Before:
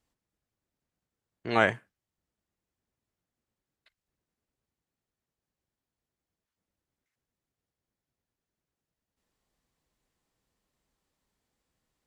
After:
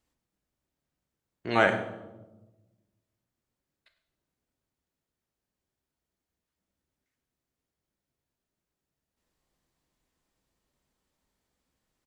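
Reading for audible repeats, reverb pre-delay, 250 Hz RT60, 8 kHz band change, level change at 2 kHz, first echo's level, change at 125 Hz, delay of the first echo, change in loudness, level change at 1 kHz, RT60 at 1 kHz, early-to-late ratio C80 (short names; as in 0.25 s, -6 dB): 1, 3 ms, 1.5 s, n/a, +1.0 dB, -16.5 dB, +1.0 dB, 0.101 s, +0.5 dB, +1.5 dB, 0.95 s, 11.5 dB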